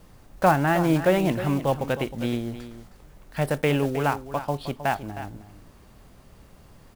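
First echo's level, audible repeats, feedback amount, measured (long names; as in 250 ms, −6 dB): −12.5 dB, 1, repeats not evenly spaced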